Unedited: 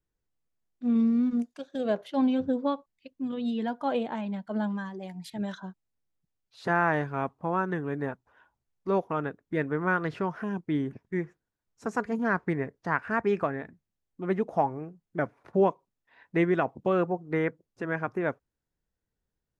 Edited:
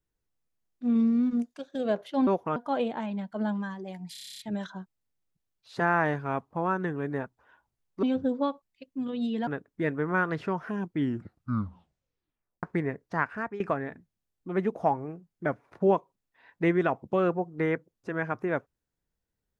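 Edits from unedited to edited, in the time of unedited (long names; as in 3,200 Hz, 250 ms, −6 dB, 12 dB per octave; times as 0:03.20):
0:02.27–0:03.71: swap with 0:08.91–0:09.20
0:05.27: stutter 0.03 s, 10 plays
0:10.67: tape stop 1.69 s
0:12.94–0:13.33: fade out, to −16.5 dB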